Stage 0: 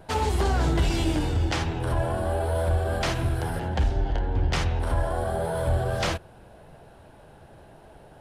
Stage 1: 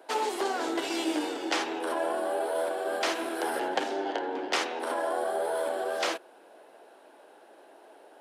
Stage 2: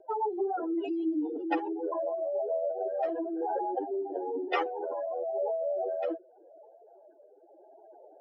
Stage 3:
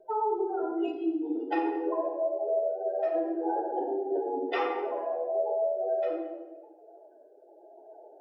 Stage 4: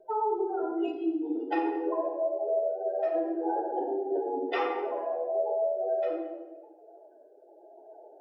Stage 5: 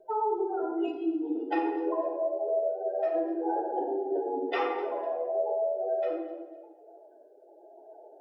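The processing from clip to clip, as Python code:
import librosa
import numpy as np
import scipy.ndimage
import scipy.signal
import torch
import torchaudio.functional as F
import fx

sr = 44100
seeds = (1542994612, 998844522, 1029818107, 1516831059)

y1 = scipy.signal.sosfilt(scipy.signal.butter(6, 290.0, 'highpass', fs=sr, output='sos'), x)
y1 = fx.rider(y1, sr, range_db=4, speed_s=0.5)
y2 = fx.spec_expand(y1, sr, power=3.9)
y2 = fx.rotary_switch(y2, sr, hz=7.0, then_hz=0.9, switch_at_s=2.72)
y2 = y2 * 10.0 ** (2.0 / 20.0)
y3 = fx.rider(y2, sr, range_db=10, speed_s=0.5)
y3 = y3 + 10.0 ** (-24.0 / 20.0) * np.pad(y3, (int(226 * sr / 1000.0), 0))[:len(y3)]
y3 = fx.room_shoebox(y3, sr, seeds[0], volume_m3=510.0, walls='mixed', distance_m=1.5)
y3 = y3 * 10.0 ** (-2.0 / 20.0)
y4 = y3
y5 = fx.echo_feedback(y4, sr, ms=250, feedback_pct=27, wet_db=-18.5)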